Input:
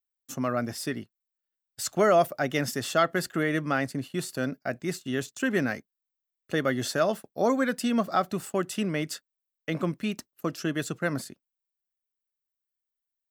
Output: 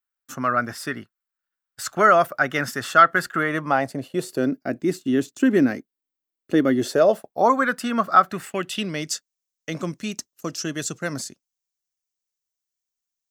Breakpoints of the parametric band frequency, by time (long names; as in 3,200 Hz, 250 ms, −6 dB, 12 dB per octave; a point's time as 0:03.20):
parametric band +13.5 dB 0.98 octaves
0:03.35 1,400 Hz
0:04.55 300 Hz
0:06.73 300 Hz
0:07.67 1,300 Hz
0:08.20 1,300 Hz
0:09.13 6,300 Hz